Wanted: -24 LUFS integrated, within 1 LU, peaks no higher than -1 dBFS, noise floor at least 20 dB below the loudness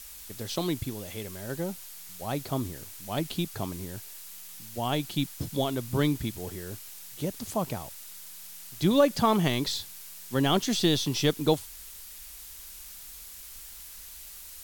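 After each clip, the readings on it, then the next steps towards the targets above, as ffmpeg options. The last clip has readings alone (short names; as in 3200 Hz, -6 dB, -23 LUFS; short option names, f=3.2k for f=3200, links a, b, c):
noise floor -45 dBFS; noise floor target -50 dBFS; loudness -29.5 LUFS; peak -10.5 dBFS; loudness target -24.0 LUFS
-> -af "afftdn=nr=6:nf=-45"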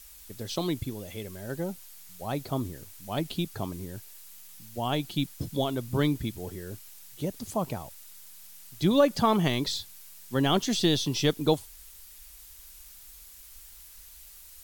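noise floor -50 dBFS; loudness -29.5 LUFS; peak -10.5 dBFS; loudness target -24.0 LUFS
-> -af "volume=5.5dB"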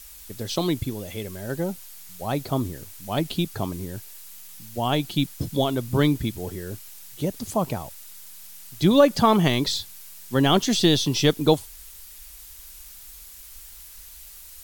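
loudness -24.0 LUFS; peak -5.0 dBFS; noise floor -44 dBFS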